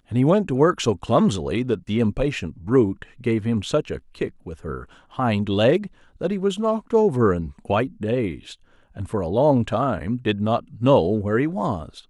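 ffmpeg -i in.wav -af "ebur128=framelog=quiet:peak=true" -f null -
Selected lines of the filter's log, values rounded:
Integrated loudness:
  I:         -21.9 LUFS
  Threshold: -32.4 LUFS
Loudness range:
  LRA:         2.8 LU
  Threshold: -43.0 LUFS
  LRA low:   -24.5 LUFS
  LRA high:  -21.7 LUFS
True peak:
  Peak:       -4.5 dBFS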